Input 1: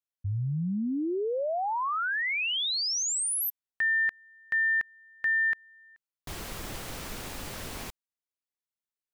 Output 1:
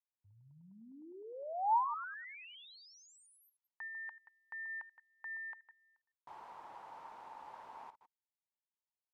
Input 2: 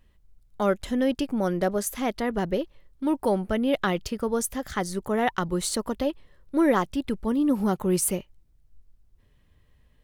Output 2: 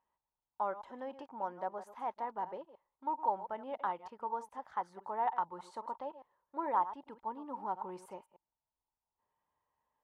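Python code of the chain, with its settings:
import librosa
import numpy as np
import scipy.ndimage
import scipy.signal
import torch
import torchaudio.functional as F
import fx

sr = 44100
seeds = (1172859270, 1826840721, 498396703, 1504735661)

y = fx.reverse_delay(x, sr, ms=102, wet_db=-13.0)
y = fx.bandpass_q(y, sr, hz=910.0, q=8.0)
y = y * 10.0 ** (2.5 / 20.0)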